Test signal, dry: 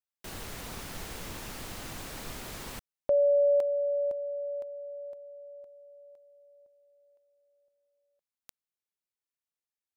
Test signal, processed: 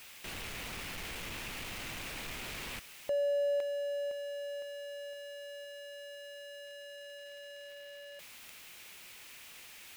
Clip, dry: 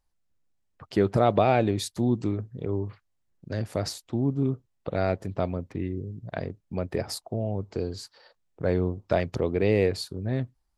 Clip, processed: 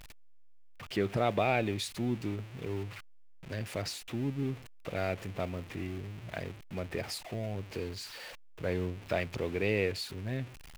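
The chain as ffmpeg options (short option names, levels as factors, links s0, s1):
-af "aeval=exprs='val(0)+0.5*0.0168*sgn(val(0))':c=same,equalizer=f=2500:w=1.3:g=10.5,volume=0.355"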